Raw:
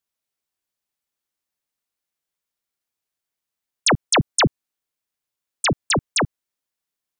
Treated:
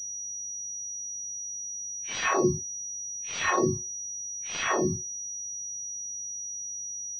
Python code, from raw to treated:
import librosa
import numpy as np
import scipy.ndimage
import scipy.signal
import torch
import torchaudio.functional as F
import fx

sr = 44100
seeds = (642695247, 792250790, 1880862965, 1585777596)

y = fx.add_hum(x, sr, base_hz=50, snr_db=25)
y = fx.paulstretch(y, sr, seeds[0], factor=4.6, window_s=0.05, from_s=3.4)
y = scipy.signal.sosfilt(scipy.signal.butter(4, 78.0, 'highpass', fs=sr, output='sos'), y)
y = fx.comb_fb(y, sr, f0_hz=370.0, decay_s=0.24, harmonics='odd', damping=0.0, mix_pct=90)
y = fx.vibrato(y, sr, rate_hz=3.9, depth_cents=21.0)
y = fx.pwm(y, sr, carrier_hz=5800.0)
y = F.gain(torch.from_numpy(y), 5.5).numpy()